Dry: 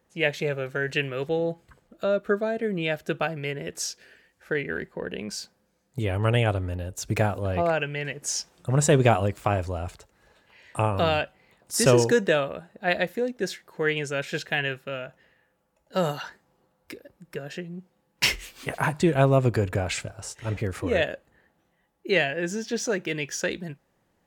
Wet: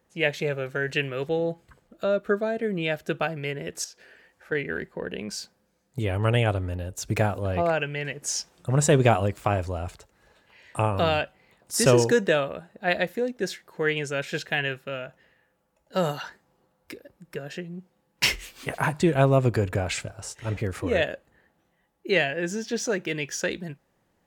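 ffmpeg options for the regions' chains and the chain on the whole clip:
-filter_complex "[0:a]asettb=1/sr,asplit=3[a][b][c];[a]atrim=end=3.844[d];[b]atrim=start=3.84:end=4.52,asetpts=PTS-STARTPTS,afade=t=in:d=0.004:c=qsin,afade=t=out:st=0.676:d=0.004:c=qsin,equalizer=f=830:w=0.49:g=7,acompressor=threshold=-50dB:ratio=2:attack=3.2:release=140:knee=1:detection=peak[e];[c]atrim=start=4.516[f];[d][e]acrossfade=d=0.004:c1=hsin:c2=qsin[g];[g][f]acrossfade=d=0.004:c1=qsin:c2=hsin"

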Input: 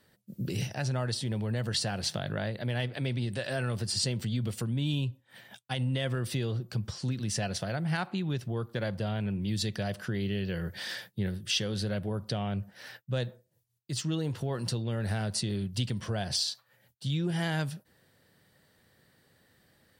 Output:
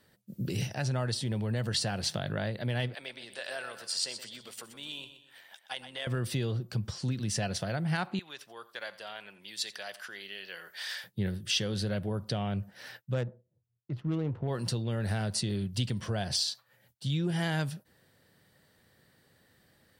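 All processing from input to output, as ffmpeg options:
-filter_complex "[0:a]asettb=1/sr,asplit=3[a][b][c];[a]atrim=end=2.954[d];[b]atrim=start=2.95:end=6.07,asetpts=PTS-STARTPTS,afade=t=in:d=0.004:c=qsin,afade=t=out:st=3.116:d=0.004:c=qsin,highpass=690,tremolo=f=91:d=0.4,aecho=1:1:124|248|372|496:0.282|0.113|0.0451|0.018,atrim=end_sample=137592[e];[c]atrim=start=6.066[f];[d][e]acrossfade=d=0.004:c1=hsin:c2=qsin[g];[g][f]acrossfade=d=0.004:c1=qsin:c2=hsin,asettb=1/sr,asplit=3[h][i][j];[h]atrim=end=8.194[k];[i]atrim=start=8.19:end=11.04,asetpts=PTS-STARTPTS,afade=t=in:d=0.004:c=qsin,afade=t=out:st=2.846:d=0.004:c=qsin,highpass=940,aecho=1:1:86:0.133,atrim=end_sample=125685[l];[j]atrim=start=11.036[m];[k][l]acrossfade=d=0.004:c1=hsin:c2=qsin[n];[n][m]acrossfade=d=0.004:c1=qsin:c2=hsin,asettb=1/sr,asplit=3[o][p][q];[o]atrim=end=13.144[r];[p]atrim=start=13.14:end=14.48,asetpts=PTS-STARTPTS,afade=t=in:d=0.004:c=qsin,afade=t=out:st=1.336:d=0.004:c=qsin,lowpass=3.8k,adynamicsmooth=sensitivity=4:basefreq=630[s];[q]atrim=start=14.476[t];[r][s]acrossfade=d=0.004:c1=hsin:c2=qsin[u];[u][t]acrossfade=d=0.004:c1=qsin:c2=hsin"

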